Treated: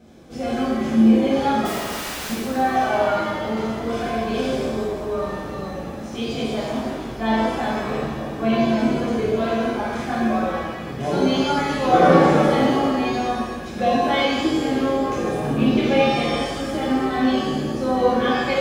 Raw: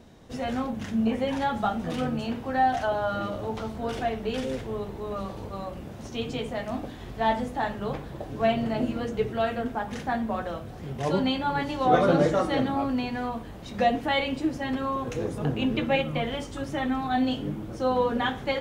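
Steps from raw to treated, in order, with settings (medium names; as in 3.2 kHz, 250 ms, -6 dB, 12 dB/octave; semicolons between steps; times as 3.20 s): comb of notches 940 Hz; 1.65–2.30 s: integer overflow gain 32.5 dB; pitch-shifted reverb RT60 1.4 s, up +7 st, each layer -8 dB, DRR -7 dB; trim -1.5 dB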